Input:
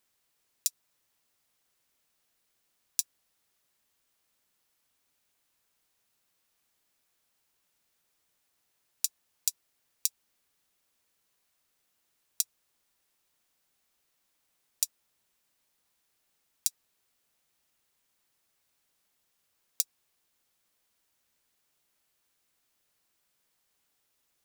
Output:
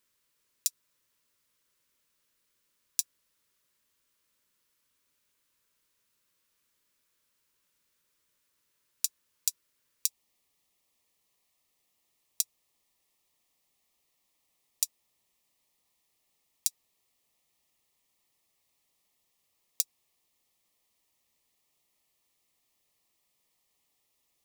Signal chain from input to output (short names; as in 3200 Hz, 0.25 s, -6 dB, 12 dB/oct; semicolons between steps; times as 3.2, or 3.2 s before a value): Butterworth band-stop 750 Hz, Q 3.2, from 10.06 s 1500 Hz